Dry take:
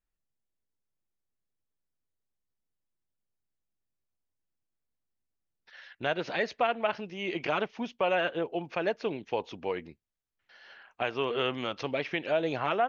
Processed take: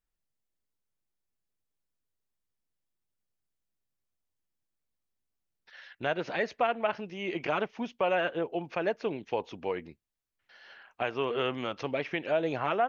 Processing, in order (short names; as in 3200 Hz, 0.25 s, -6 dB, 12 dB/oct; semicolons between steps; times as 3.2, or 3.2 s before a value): dynamic EQ 4100 Hz, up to -5 dB, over -50 dBFS, Q 1.2